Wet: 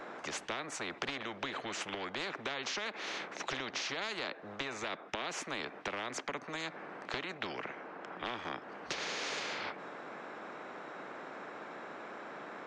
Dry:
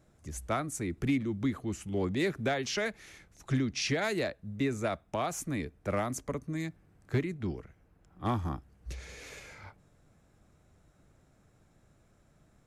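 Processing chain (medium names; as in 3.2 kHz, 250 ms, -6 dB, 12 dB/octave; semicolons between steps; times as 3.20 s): high-pass 390 Hz 24 dB/octave; compression 4:1, threshold -44 dBFS, peak gain reduction 14 dB; tape spacing loss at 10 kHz 43 dB; spectrum-flattening compressor 4:1; trim +18 dB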